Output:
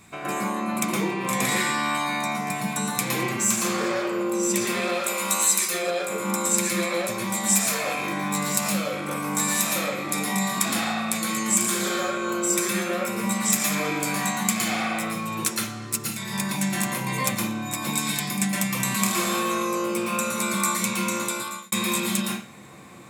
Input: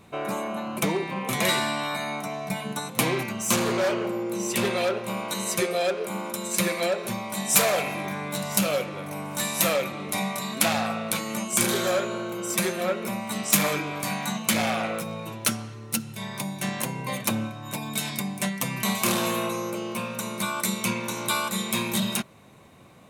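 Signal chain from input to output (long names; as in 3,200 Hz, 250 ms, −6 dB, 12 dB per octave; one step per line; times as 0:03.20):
0:04.89–0:05.68: spectral tilt +3 dB per octave
downward compressor 3 to 1, threshold −31 dBFS, peak gain reduction 13 dB
convolution reverb RT60 0.45 s, pre-delay 112 ms, DRR −4 dB
0:21.13–0:21.72: fade out
level +4 dB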